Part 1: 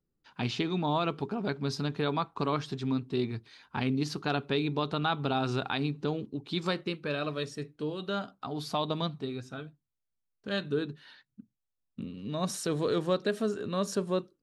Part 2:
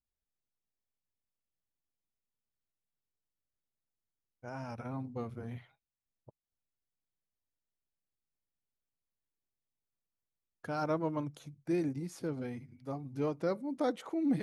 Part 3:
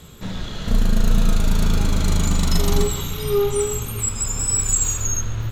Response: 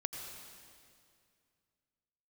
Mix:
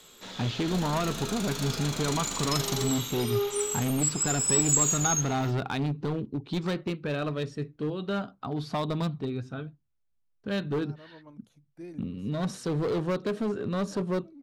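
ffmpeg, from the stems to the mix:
-filter_complex "[0:a]lowpass=f=2.7k:p=1,lowshelf=f=150:g=9,volume=26.5dB,asoftclip=hard,volume=-26.5dB,volume=2dB,asplit=2[a][b];[1:a]adelay=100,volume=-11dB[c];[2:a]acrossover=split=270 6900:gain=0.0794 1 0.224[d][e][f];[d][e][f]amix=inputs=3:normalize=0,crystalizer=i=2.5:c=0,volume=-8dB[g];[b]apad=whole_len=640531[h];[c][h]sidechaincompress=threshold=-40dB:ratio=4:attack=38:release=787[i];[a][i][g]amix=inputs=3:normalize=0"

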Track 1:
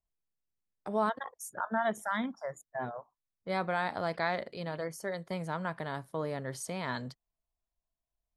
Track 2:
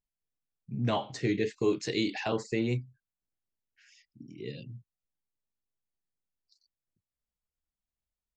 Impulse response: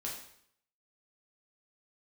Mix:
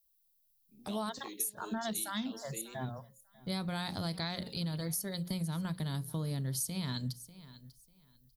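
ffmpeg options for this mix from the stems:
-filter_complex "[0:a]aexciter=amount=3.9:drive=6.9:freq=10k,asubboost=boost=9:cutoff=190,volume=-2dB,asplit=2[a][b];[b]volume=-22.5dB[c];[1:a]highpass=f=230:w=0.5412,highpass=f=230:w=1.3066,volume=-17.5dB[d];[c]aecho=0:1:594|1188|1782:1|0.21|0.0441[e];[a][d][e]amix=inputs=3:normalize=0,highshelf=f=2.8k:t=q:w=1.5:g=11.5,bandreject=f=60:t=h:w=6,bandreject=f=120:t=h:w=6,bandreject=f=180:t=h:w=6,bandreject=f=240:t=h:w=6,bandreject=f=300:t=h:w=6,bandreject=f=360:t=h:w=6,bandreject=f=420:t=h:w=6,bandreject=f=480:t=h:w=6,bandreject=f=540:t=h:w=6,acompressor=threshold=-33dB:ratio=5"

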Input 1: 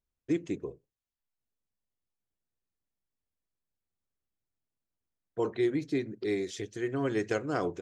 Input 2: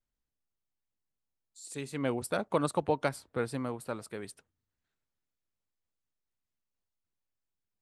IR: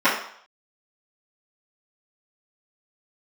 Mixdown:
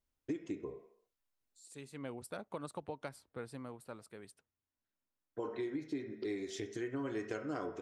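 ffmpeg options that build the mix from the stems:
-filter_complex "[0:a]volume=0dB,asplit=2[a][b];[b]volume=-24dB[c];[1:a]volume=-11dB,asplit=2[d][e];[e]apad=whole_len=344436[f];[a][f]sidechaincompress=threshold=-60dB:ratio=8:attack=7.2:release=1390[g];[2:a]atrim=start_sample=2205[h];[c][h]afir=irnorm=-1:irlink=0[i];[g][d][i]amix=inputs=3:normalize=0,acompressor=threshold=-38dB:ratio=4"

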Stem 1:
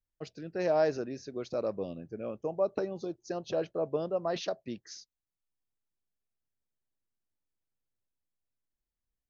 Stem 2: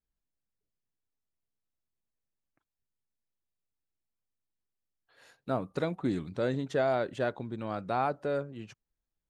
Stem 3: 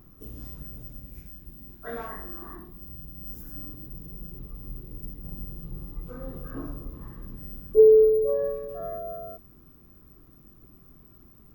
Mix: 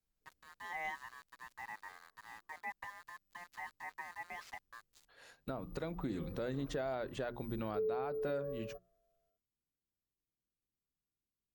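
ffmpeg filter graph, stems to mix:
-filter_complex "[0:a]aeval=exprs='val(0)*sin(2*PI*1400*n/s)':c=same,aeval=exprs='val(0)*gte(abs(val(0)),0.0075)':c=same,adelay=50,volume=-12.5dB[a];[1:a]volume=0dB,asplit=2[b][c];[2:a]equalizer=f=490:w=7.9:g=8,volume=-12dB[d];[c]apad=whole_len=509016[e];[d][e]sidechaingate=range=-33dB:threshold=-53dB:ratio=16:detection=peak[f];[b][f]amix=inputs=2:normalize=0,bandreject=f=60:t=h:w=6,bandreject=f=120:t=h:w=6,bandreject=f=180:t=h:w=6,bandreject=f=240:t=h:w=6,bandreject=f=300:t=h:w=6,bandreject=f=360:t=h:w=6,acompressor=threshold=-32dB:ratio=4,volume=0dB[g];[a][g]amix=inputs=2:normalize=0,alimiter=level_in=4dB:limit=-24dB:level=0:latency=1:release=257,volume=-4dB"

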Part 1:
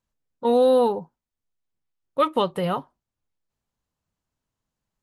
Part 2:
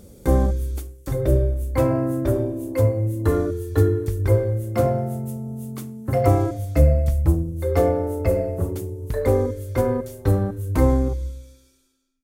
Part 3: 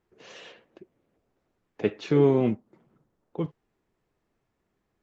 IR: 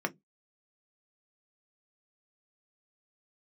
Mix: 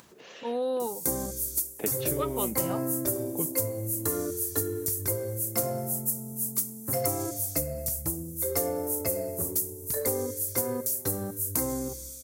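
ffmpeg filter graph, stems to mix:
-filter_complex "[0:a]acompressor=mode=upward:threshold=-28dB:ratio=2.5,volume=-12dB[a];[1:a]aexciter=amount=4.3:drive=6.2:freq=4.8k,highshelf=f=3.6k:g=10,adelay=800,volume=-7dB[b];[2:a]acompressor=threshold=-26dB:ratio=6,volume=-1dB[c];[b][c]amix=inputs=2:normalize=0,acompressor=threshold=-23dB:ratio=6,volume=0dB[d];[a][d]amix=inputs=2:normalize=0,highpass=140,acompressor=mode=upward:threshold=-46dB:ratio=2.5"

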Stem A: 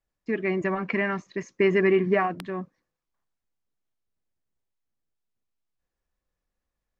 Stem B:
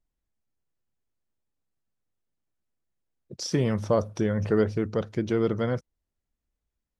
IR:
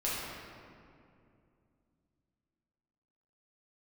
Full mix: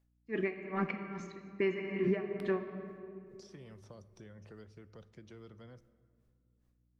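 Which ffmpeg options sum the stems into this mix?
-filter_complex "[0:a]bandreject=f=60:t=h:w=6,bandreject=f=120:t=h:w=6,bandreject=f=180:t=h:w=6,aeval=exprs='val(0)*pow(10,-35*(0.5-0.5*cos(2*PI*2.4*n/s))/20)':c=same,volume=0dB,asplit=2[a][b];[b]volume=-12dB[c];[1:a]acrossover=split=110|300|690|3200[d][e][f][g][h];[d]acompressor=threshold=-41dB:ratio=4[i];[e]acompressor=threshold=-40dB:ratio=4[j];[f]acompressor=threshold=-42dB:ratio=4[k];[g]acompressor=threshold=-44dB:ratio=4[l];[h]acompressor=threshold=-44dB:ratio=4[m];[i][j][k][l][m]amix=inputs=5:normalize=0,volume=-19dB,asplit=2[n][o];[o]volume=-22.5dB[p];[2:a]atrim=start_sample=2205[q];[c][p]amix=inputs=2:normalize=0[r];[r][q]afir=irnorm=-1:irlink=0[s];[a][n][s]amix=inputs=3:normalize=0,aeval=exprs='val(0)+0.000224*(sin(2*PI*60*n/s)+sin(2*PI*2*60*n/s)/2+sin(2*PI*3*60*n/s)/3+sin(2*PI*4*60*n/s)/4+sin(2*PI*5*60*n/s)/5)':c=same,alimiter=limit=-21.5dB:level=0:latency=1:release=282"

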